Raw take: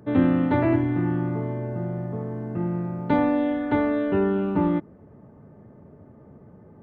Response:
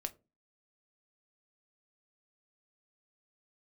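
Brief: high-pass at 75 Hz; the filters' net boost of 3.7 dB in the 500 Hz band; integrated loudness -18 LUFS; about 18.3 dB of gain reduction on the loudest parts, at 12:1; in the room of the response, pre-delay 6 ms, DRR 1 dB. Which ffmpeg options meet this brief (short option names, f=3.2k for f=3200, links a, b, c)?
-filter_complex "[0:a]highpass=75,equalizer=f=500:t=o:g=5,acompressor=threshold=-33dB:ratio=12,asplit=2[a][b];[1:a]atrim=start_sample=2205,adelay=6[c];[b][c]afir=irnorm=-1:irlink=0,volume=0.5dB[d];[a][d]amix=inputs=2:normalize=0,volume=18dB"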